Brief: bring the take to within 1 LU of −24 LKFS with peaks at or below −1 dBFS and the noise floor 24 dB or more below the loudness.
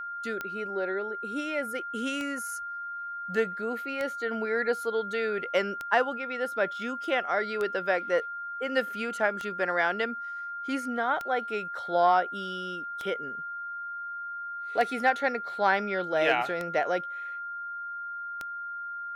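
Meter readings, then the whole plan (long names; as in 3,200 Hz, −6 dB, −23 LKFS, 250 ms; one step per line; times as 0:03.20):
number of clicks 11; interfering tone 1,400 Hz; level of the tone −34 dBFS; integrated loudness −30.0 LKFS; sample peak −9.5 dBFS; target loudness −24.0 LKFS
→ click removal
notch filter 1,400 Hz, Q 30
level +6 dB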